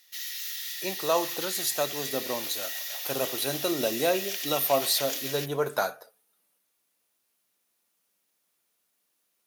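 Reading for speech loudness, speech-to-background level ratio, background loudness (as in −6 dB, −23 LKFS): −29.0 LKFS, 3.5 dB, −32.5 LKFS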